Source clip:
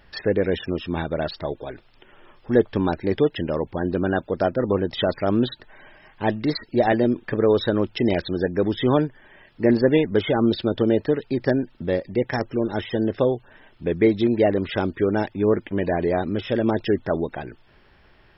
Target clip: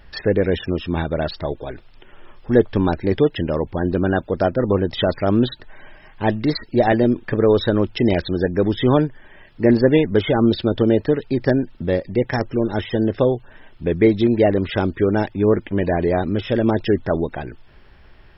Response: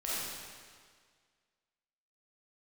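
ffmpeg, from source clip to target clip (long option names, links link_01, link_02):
-af "lowshelf=frequency=86:gain=9.5,volume=2.5dB"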